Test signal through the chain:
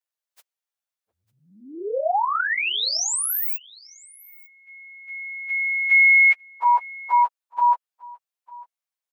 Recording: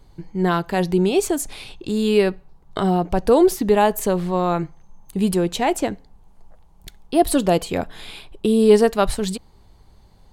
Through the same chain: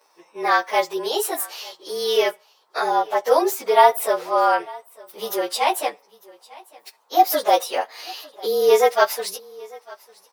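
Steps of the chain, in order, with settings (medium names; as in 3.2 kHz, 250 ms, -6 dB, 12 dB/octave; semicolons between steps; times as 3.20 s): frequency axis rescaled in octaves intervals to 108%; high-pass 520 Hz 24 dB/octave; delay 900 ms -23 dB; trim +6.5 dB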